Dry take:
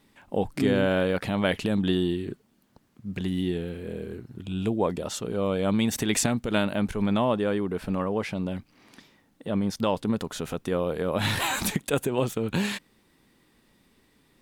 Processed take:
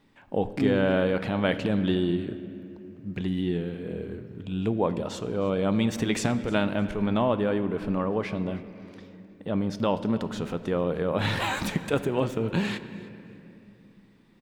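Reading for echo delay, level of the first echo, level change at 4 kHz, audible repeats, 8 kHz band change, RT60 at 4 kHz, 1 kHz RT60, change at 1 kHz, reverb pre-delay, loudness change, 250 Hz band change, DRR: 0.308 s, -21.5 dB, -3.0 dB, 2, -9.0 dB, 1.6 s, 2.3 s, 0.0 dB, 6 ms, 0.0 dB, 0.0 dB, 10.5 dB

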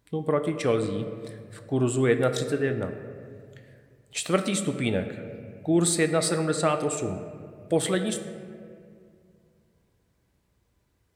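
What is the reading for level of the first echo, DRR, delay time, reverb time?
none, 7.0 dB, none, 2.2 s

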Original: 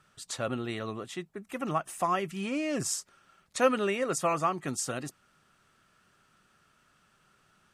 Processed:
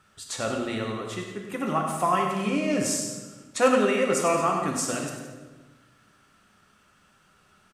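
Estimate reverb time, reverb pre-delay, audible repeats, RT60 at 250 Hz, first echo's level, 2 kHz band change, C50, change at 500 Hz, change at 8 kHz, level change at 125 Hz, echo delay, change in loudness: 1.3 s, 4 ms, 2, 1.6 s, -9.0 dB, +5.5 dB, 3.0 dB, +6.0 dB, +5.0 dB, +5.0 dB, 98 ms, +5.5 dB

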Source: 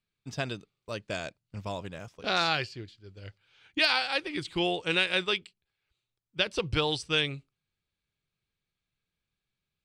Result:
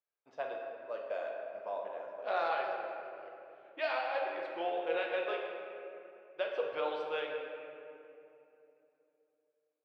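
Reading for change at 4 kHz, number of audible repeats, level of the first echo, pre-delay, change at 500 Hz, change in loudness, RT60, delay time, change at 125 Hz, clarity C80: -19.0 dB, none, none, 6 ms, -0.5 dB, -8.5 dB, 2.8 s, none, under -30 dB, 3.0 dB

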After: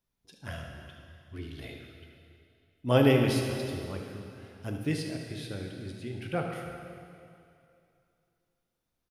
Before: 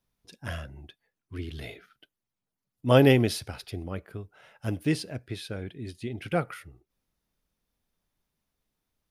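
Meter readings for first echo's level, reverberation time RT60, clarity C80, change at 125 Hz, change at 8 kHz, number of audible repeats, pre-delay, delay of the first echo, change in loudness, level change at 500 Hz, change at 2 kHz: -11.5 dB, 2.6 s, 4.5 dB, -2.5 dB, -3.0 dB, 1, 4 ms, 74 ms, -3.0 dB, -3.0 dB, -3.0 dB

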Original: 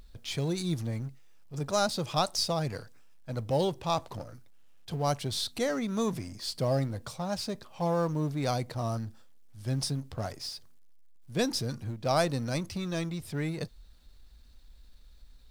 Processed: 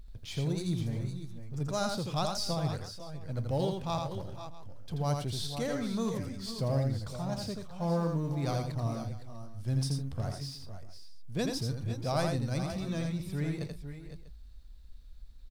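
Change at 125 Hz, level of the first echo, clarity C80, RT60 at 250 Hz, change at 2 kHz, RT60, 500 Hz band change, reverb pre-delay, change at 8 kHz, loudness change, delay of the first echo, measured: +1.0 dB, -4.5 dB, none, none, -4.5 dB, none, -4.0 dB, none, -5.0 dB, -2.0 dB, 83 ms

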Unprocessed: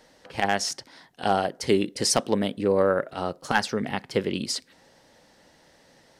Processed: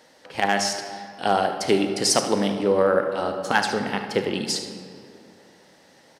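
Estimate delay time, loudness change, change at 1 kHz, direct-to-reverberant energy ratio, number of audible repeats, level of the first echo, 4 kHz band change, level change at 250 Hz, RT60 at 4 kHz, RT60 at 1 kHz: 75 ms, +3.0 dB, +3.5 dB, 5.5 dB, 1, -13.0 dB, +3.5 dB, +2.0 dB, 1.3 s, 2.3 s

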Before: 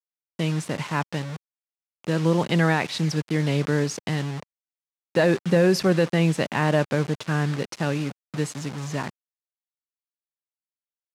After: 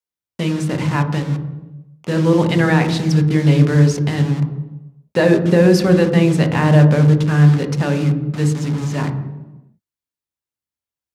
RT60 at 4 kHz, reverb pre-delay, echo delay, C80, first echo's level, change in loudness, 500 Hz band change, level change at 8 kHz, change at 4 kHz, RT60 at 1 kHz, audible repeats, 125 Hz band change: 0.80 s, 3 ms, none, 11.5 dB, none, +8.5 dB, +6.5 dB, +3.5 dB, +3.5 dB, 1.0 s, none, +11.5 dB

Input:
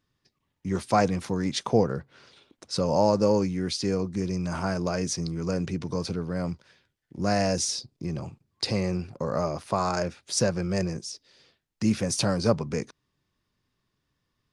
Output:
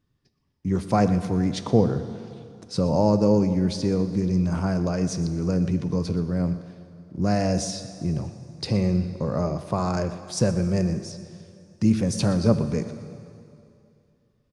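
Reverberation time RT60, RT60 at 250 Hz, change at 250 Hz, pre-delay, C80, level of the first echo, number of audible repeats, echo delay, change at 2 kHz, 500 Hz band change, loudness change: 2.6 s, 2.6 s, +5.5 dB, 6 ms, 11.0 dB, -16.5 dB, 1, 0.121 s, -3.0 dB, +1.0 dB, +3.0 dB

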